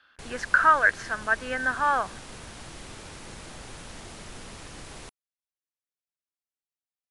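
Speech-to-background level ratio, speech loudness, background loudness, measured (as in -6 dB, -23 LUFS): 19.0 dB, -23.5 LUFS, -42.5 LUFS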